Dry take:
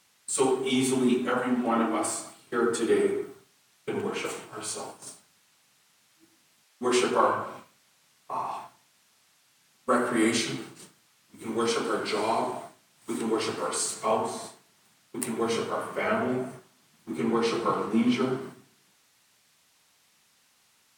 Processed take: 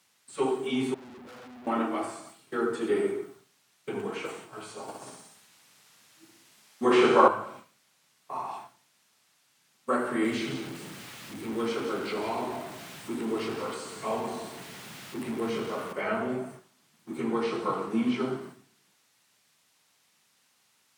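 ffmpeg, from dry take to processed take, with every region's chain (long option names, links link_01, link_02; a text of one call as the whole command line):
ffmpeg -i in.wav -filter_complex "[0:a]asettb=1/sr,asplit=3[link_01][link_02][link_03];[link_01]atrim=end=0.944[link_04];[link_02]atrim=start=0.94:end=1.67,asetpts=PTS-STARTPTS,afade=type=in:duration=0.004:curve=qsin,afade=type=out:start_time=0.726:duration=0.004:curve=qsin,lowpass=1500,aeval=exprs='(tanh(141*val(0)+0.6)-tanh(0.6))/141':channel_layout=same,acrusher=bits=4:mode=log:mix=0:aa=0.000001[link_05];[link_03]atrim=start=1.666[link_06];[link_04][link_05]acrossfade=duration=0.004:curve1=hsin:curve2=qsin[link_07];[link_07][link_06]acrossfade=duration=0.004:curve1=qsin:curve2=hsin,asettb=1/sr,asplit=3[link_08][link_09][link_10];[link_08]atrim=end=4.884[link_11];[link_09]atrim=start=4.88:end=7.28,asetpts=PTS-STARTPTS,afade=type=in:duration=0.004:curve=qsin,afade=type=out:start_time=2.396:duration=0.004:curve=qsin,acontrast=63,aecho=1:1:62|124|186|248|310|372:0.596|0.298|0.149|0.0745|0.0372|0.0186,atrim=end_sample=105840[link_12];[link_10]atrim=start=7.276[link_13];[link_11][link_12]acrossfade=duration=0.004:curve1=hsin:curve2=qsin[link_14];[link_14][link_13]acrossfade=duration=0.004:curve1=qsin:curve2=hsin,asettb=1/sr,asplit=3[link_15][link_16][link_17];[link_15]atrim=end=10.244[link_18];[link_16]atrim=start=10.24:end=15.93,asetpts=PTS-STARTPTS,afade=type=in:duration=0.004:curve=qsin,afade=type=out:start_time=5.686:duration=0.004:curve=qsin,aeval=exprs='val(0)+0.5*0.0316*sgn(val(0))':channel_layout=same,equalizer=frequency=940:width=0.5:gain=-5,aecho=1:1:169:0.316,atrim=end_sample=250929[link_19];[link_17]atrim=start=15.926[link_20];[link_18][link_19]acrossfade=duration=0.004:curve1=hsin:curve2=qsin[link_21];[link_21][link_20]acrossfade=duration=0.004:curve1=qsin:curve2=hsin,acrossover=split=3300[link_22][link_23];[link_23]acompressor=threshold=-46dB:ratio=4:attack=1:release=60[link_24];[link_22][link_24]amix=inputs=2:normalize=0,highpass=91,volume=-3dB" out.wav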